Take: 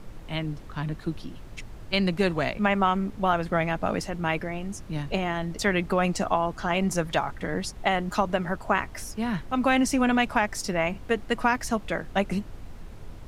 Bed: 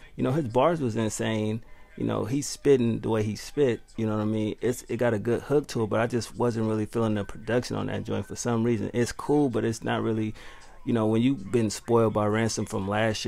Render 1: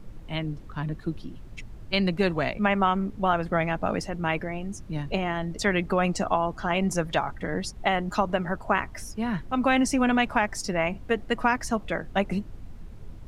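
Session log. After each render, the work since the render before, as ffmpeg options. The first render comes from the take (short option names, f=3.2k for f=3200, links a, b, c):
-af "afftdn=nr=7:nf=-42"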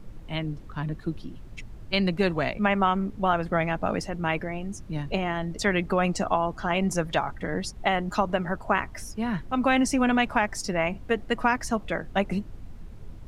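-af anull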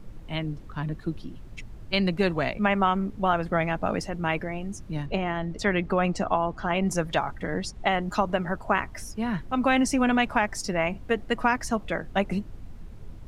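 -filter_complex "[0:a]asettb=1/sr,asplit=3[a][b][c];[a]atrim=end=5.064[d];[b]atrim=start=5.06:end=6.86,asetpts=PTS-STARTPTS,afade=t=in:d=0.004:c=qsin,afade=t=out:st=1.796:d=0.004:c=qsin,lowpass=f=3.9k:p=1[e];[c]atrim=start=6.856[f];[d][e]acrossfade=d=0.004:c1=hsin:c2=qsin[g];[g][f]acrossfade=d=0.004:c1=qsin:c2=hsin,asettb=1/sr,asplit=3[h][i][j];[h]atrim=end=7.584[k];[i]atrim=start=7.58:end=8.02,asetpts=PTS-STARTPTS,afade=t=in:d=0.004:c=qsin,afade=t=out:st=0.436:d=0.004:c=qsin,lowpass=9.7k[l];[j]atrim=start=8.016[m];[k][l]acrossfade=d=0.004:c1=hsin:c2=qsin[n];[n][m]acrossfade=d=0.004:c1=qsin:c2=hsin"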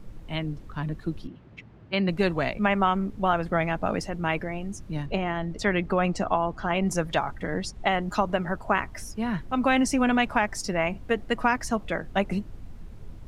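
-filter_complex "[0:a]asettb=1/sr,asplit=3[a][b][c];[a]atrim=end=1.274[d];[b]atrim=start=1.27:end=2.09,asetpts=PTS-STARTPTS,afade=t=in:d=0.004:c=qsin,afade=t=out:st=0.816:d=0.004:c=qsin,highpass=110,lowpass=2.8k[e];[c]atrim=start=2.086[f];[d][e]acrossfade=d=0.004:c1=hsin:c2=qsin[g];[g][f]acrossfade=d=0.004:c1=qsin:c2=hsin"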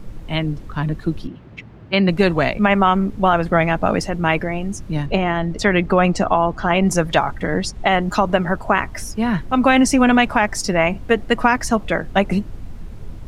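-af "volume=9dB,alimiter=limit=-3dB:level=0:latency=1"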